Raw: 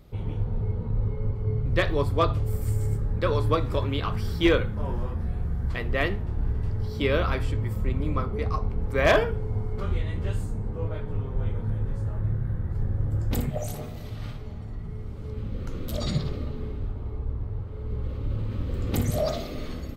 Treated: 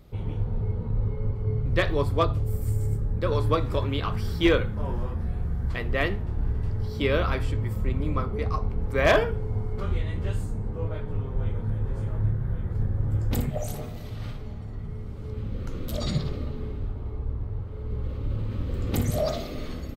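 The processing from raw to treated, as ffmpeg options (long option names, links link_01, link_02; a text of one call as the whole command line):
ffmpeg -i in.wav -filter_complex "[0:a]asettb=1/sr,asplit=3[link_01][link_02][link_03];[link_01]atrim=end=2.234[link_04];[link_02]atrim=start=2.23:end=3.32,asetpts=PTS-STARTPTS,afade=type=in:duration=0.004:curve=qsin,afade=type=out:start_time=1.086:duration=0.004:curve=qsin,equalizer=frequency=2300:width=0.33:gain=-5[link_05];[link_03]atrim=start=3.316[link_06];[link_04][link_05]acrossfade=duration=0.004:curve1=hsin:curve2=qsin[link_07];[link_07][link_06]acrossfade=duration=0.004:curve1=qsin:curve2=hsin,asplit=2[link_08][link_09];[link_09]afade=type=in:start_time=11.28:duration=0.01,afade=type=out:start_time=11.74:duration=0.01,aecho=0:1:560|1120|1680|2240|2800|3360|3920|4480|5040|5600|6160|6720:0.501187|0.37589|0.281918|0.211438|0.158579|0.118934|0.0892006|0.0669004|0.0501753|0.0376315|0.0282236|0.0211677[link_10];[link_08][link_10]amix=inputs=2:normalize=0" out.wav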